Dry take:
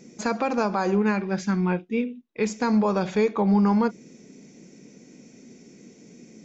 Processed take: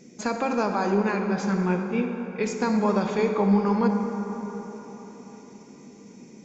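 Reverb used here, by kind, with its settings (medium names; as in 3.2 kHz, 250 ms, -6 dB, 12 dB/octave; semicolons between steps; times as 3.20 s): plate-style reverb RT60 4.5 s, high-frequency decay 0.45×, DRR 4 dB; trim -1.5 dB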